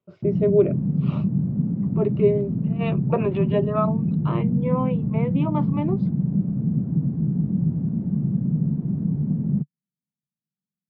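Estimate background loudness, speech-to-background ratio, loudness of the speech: -24.0 LUFS, -2.0 dB, -26.0 LUFS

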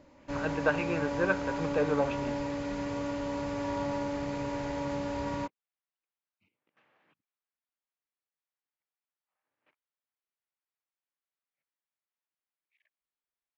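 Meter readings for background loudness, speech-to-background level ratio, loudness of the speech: -34.5 LUFS, 2.5 dB, -32.0 LUFS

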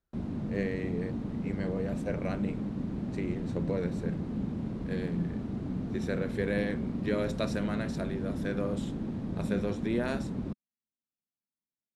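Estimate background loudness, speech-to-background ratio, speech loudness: -35.5 LUFS, -0.5 dB, -36.0 LUFS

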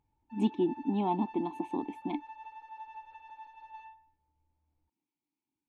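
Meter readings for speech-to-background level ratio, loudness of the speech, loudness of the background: 15.5 dB, -33.0 LUFS, -48.5 LUFS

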